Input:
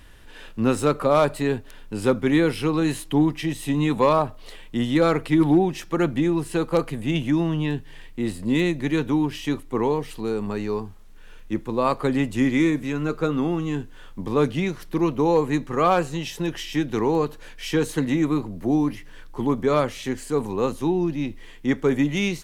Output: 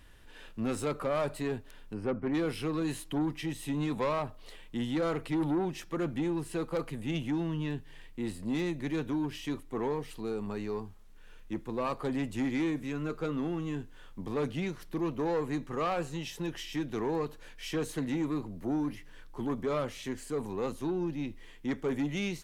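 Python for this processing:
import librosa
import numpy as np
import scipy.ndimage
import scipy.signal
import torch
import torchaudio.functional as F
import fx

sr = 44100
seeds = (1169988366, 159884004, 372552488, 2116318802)

y = fx.moving_average(x, sr, points=12, at=(1.93, 2.33), fade=0.02)
y = 10.0 ** (-17.0 / 20.0) * np.tanh(y / 10.0 ** (-17.0 / 20.0))
y = y * librosa.db_to_amplitude(-8.0)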